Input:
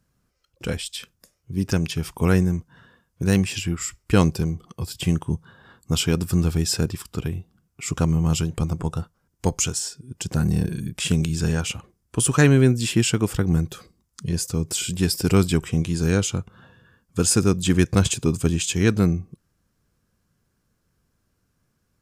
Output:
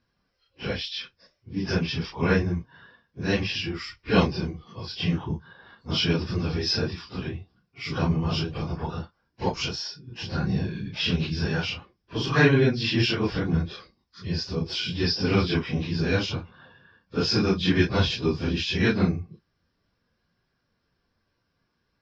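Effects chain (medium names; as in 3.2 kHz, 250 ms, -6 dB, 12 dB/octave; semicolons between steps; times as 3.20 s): phase randomisation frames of 100 ms; Chebyshev low-pass 5.4 kHz, order 6; bass shelf 360 Hz -8 dB; band-stop 1.3 kHz, Q 11; trim +2.5 dB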